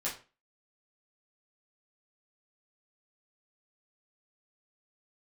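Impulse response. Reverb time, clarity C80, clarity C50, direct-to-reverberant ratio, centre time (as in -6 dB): 0.35 s, 15.0 dB, 8.5 dB, -8.0 dB, 25 ms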